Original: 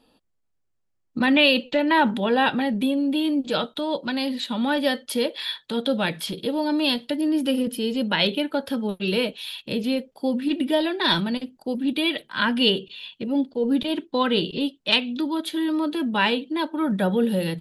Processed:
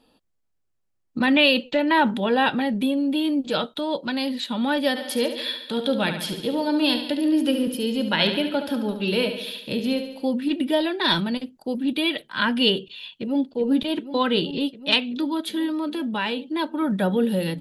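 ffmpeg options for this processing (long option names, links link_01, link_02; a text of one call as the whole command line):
ffmpeg -i in.wav -filter_complex "[0:a]asplit=3[link_01][link_02][link_03];[link_01]afade=type=out:start_time=4.95:duration=0.02[link_04];[link_02]aecho=1:1:71|142|213|284|355|426|497:0.355|0.206|0.119|0.0692|0.0402|0.0233|0.0135,afade=type=in:start_time=4.95:duration=0.02,afade=type=out:start_time=10.25:duration=0.02[link_05];[link_03]afade=type=in:start_time=10.25:duration=0.02[link_06];[link_04][link_05][link_06]amix=inputs=3:normalize=0,asplit=2[link_07][link_08];[link_08]afade=type=in:start_time=13.13:duration=0.01,afade=type=out:start_time=13.53:duration=0.01,aecho=0:1:380|760|1140|1520|1900|2280|2660|3040|3420|3800|4180|4560:0.298538|0.253758|0.215694|0.18334|0.155839|0.132463|0.112594|0.0957045|0.0813488|0.0691465|0.0587745|0.0499584[link_09];[link_07][link_09]amix=inputs=2:normalize=0,asettb=1/sr,asplit=3[link_10][link_11][link_12];[link_10]atrim=end=15.664[link_13];[link_11]atrim=start=15.66:end=16.53,asetpts=PTS-STARTPTS,afade=type=in:duration=0.004:curve=qsin,afade=type=out:start_time=0.866:duration=0.004:curve=qsin,acompressor=threshold=-25dB:ratio=2:attack=3.2:release=140:knee=1:detection=peak[link_14];[link_12]atrim=start=16.526[link_15];[link_13][link_14]acrossfade=duration=0.004:curve1=hsin:curve2=qsin[link_16];[link_16][link_15]acrossfade=duration=0.004:curve1=qsin:curve2=hsin" out.wav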